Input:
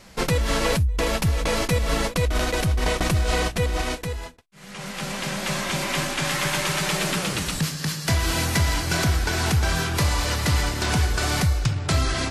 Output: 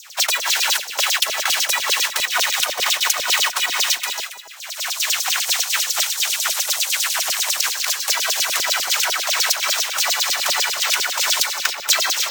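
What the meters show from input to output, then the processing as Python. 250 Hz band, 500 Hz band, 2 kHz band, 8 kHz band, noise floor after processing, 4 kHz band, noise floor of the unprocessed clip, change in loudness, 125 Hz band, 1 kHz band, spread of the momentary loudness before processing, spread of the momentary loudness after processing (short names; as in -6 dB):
under -20 dB, -6.0 dB, +5.5 dB, +11.0 dB, -33 dBFS, +10.0 dB, -40 dBFS, +5.5 dB, under -35 dB, +2.5 dB, 5 LU, 3 LU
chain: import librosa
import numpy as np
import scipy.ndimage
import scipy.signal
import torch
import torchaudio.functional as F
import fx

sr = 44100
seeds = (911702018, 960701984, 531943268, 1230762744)

p1 = fx.spec_gate(x, sr, threshold_db=-15, keep='weak')
p2 = fx.schmitt(p1, sr, flips_db=-25.0)
p3 = p1 + (p2 * librosa.db_to_amplitude(-6.5))
p4 = fx.high_shelf(p3, sr, hz=2700.0, db=10.0)
p5 = fx.rider(p4, sr, range_db=10, speed_s=0.5)
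p6 = fx.highpass(p5, sr, hz=210.0, slope=6)
p7 = fx.peak_eq(p6, sr, hz=4700.0, db=-4.0, octaves=0.22)
p8 = fx.filter_lfo_highpass(p7, sr, shape='saw_down', hz=10.0, low_hz=530.0, high_hz=6700.0, q=5.1)
p9 = np.repeat(scipy.signal.resample_poly(p8, 1, 2), 2)[:len(p8)]
y = p9 + fx.echo_single(p9, sr, ms=276, db=-11.0, dry=0)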